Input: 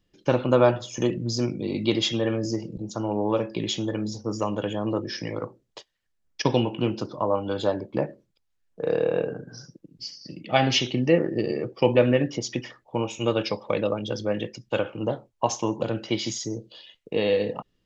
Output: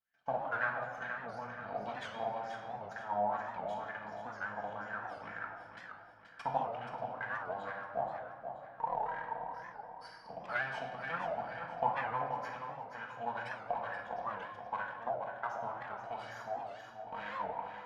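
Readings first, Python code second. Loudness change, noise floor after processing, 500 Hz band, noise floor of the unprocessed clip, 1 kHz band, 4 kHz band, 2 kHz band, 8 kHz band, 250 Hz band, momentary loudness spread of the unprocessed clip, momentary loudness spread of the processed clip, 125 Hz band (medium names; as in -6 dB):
-13.5 dB, -53 dBFS, -17.0 dB, -73 dBFS, -3.5 dB, -24.5 dB, -4.0 dB, no reading, -25.5 dB, 11 LU, 10 LU, -23.0 dB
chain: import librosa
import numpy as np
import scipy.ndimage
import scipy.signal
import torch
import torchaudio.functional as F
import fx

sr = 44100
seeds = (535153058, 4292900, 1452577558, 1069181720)

p1 = fx.lower_of_two(x, sr, delay_ms=1.3)
p2 = fx.recorder_agc(p1, sr, target_db=-15.0, rise_db_per_s=9.7, max_gain_db=30)
p3 = fx.low_shelf(p2, sr, hz=180.0, db=8.0)
p4 = fx.filter_lfo_bandpass(p3, sr, shape='sine', hz=2.1, low_hz=710.0, high_hz=1700.0, q=7.2)
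p5 = p4 + fx.echo_feedback(p4, sr, ms=479, feedback_pct=42, wet_db=-8, dry=0)
p6 = fx.room_shoebox(p5, sr, seeds[0], volume_m3=1100.0, walls='mixed', distance_m=1.6)
p7 = fx.record_warp(p6, sr, rpm=78.0, depth_cents=160.0)
y = p7 * librosa.db_to_amplitude(-2.0)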